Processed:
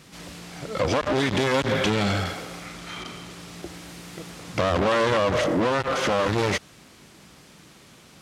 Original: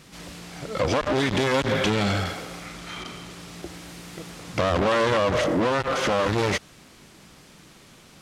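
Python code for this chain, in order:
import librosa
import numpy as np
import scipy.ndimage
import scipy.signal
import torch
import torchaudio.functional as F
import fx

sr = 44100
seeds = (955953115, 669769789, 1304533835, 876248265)

y = scipy.signal.sosfilt(scipy.signal.butter(2, 48.0, 'highpass', fs=sr, output='sos'), x)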